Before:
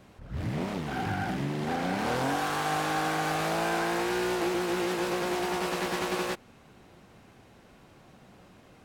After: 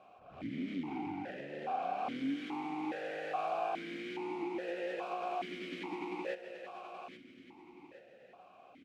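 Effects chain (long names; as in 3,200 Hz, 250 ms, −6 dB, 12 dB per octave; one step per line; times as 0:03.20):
repeating echo 825 ms, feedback 35%, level −14 dB
downward compressor, threshold −32 dBFS, peak gain reduction 7.5 dB
formant filter that steps through the vowels 2.4 Hz
level +7.5 dB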